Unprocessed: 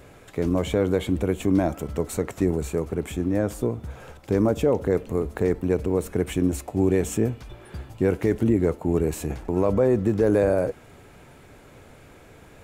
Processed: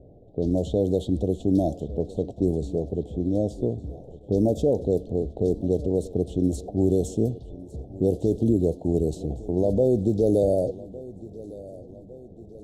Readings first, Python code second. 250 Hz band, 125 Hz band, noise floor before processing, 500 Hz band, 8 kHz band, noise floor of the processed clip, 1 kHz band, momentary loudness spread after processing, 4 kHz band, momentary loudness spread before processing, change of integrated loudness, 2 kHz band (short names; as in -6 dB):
-0.5 dB, 0.0 dB, -49 dBFS, -0.5 dB, -8.0 dB, -46 dBFS, -6.0 dB, 18 LU, n/a, 9 LU, -1.0 dB, under -35 dB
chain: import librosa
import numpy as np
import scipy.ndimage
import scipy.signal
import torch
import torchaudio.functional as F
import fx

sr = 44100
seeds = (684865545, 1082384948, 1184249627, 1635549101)

y = scipy.signal.sosfilt(scipy.signal.ellip(3, 1.0, 40, [690.0, 3700.0], 'bandstop', fs=sr, output='sos'), x)
y = fx.env_lowpass(y, sr, base_hz=650.0, full_db=-17.0)
y = fx.echo_feedback(y, sr, ms=1157, feedback_pct=54, wet_db=-19.0)